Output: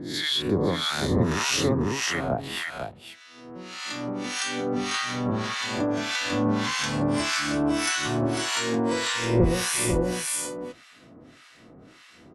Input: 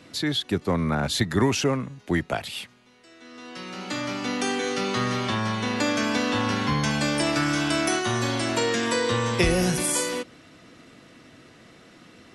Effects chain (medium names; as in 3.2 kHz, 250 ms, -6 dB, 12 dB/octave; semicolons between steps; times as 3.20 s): reverse spectral sustain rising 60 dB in 1.05 s; on a send: delay 496 ms -4 dB; on the sum: harmonic tremolo 1.7 Hz, depth 100%, crossover 1 kHz